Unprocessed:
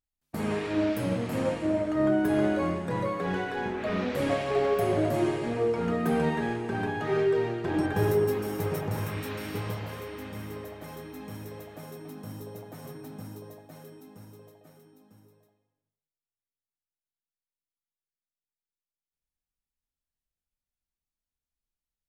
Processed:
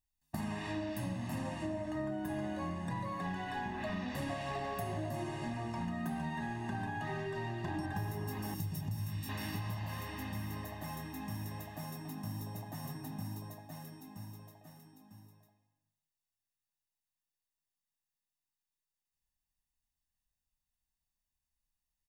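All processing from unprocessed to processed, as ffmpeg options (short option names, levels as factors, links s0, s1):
-filter_complex "[0:a]asettb=1/sr,asplit=3[s0][s1][s2];[s0]atrim=end=8.544[s3];[s1]atrim=start=8.54:end=9.29,asetpts=PTS-STARTPTS,afade=t=in:d=0.004:c=qsin,afade=t=out:st=0.746:d=0.004:c=qsin,acrossover=split=310|3000[s4][s5][s6];[s5]acompressor=threshold=0.00158:ratio=2:attack=3.2:release=140:knee=2.83:detection=peak[s7];[s4][s7][s6]amix=inputs=3:normalize=0,asplit=2[s8][s9];[s9]adelay=18,volume=0.251[s10];[s8][s10]amix=inputs=2:normalize=0,atrim=end_sample=33075[s11];[s2]atrim=start=9.286[s12];[s3][s11]acrossfade=d=0.004:c1=hsin:c2=qsin[s13];[s13][s12]acrossfade=d=0.004:c1=qsin:c2=hsin,bass=f=250:g=1,treble=f=4000:g=3,aecho=1:1:1.1:0.99,acompressor=threshold=0.0251:ratio=6,volume=0.668"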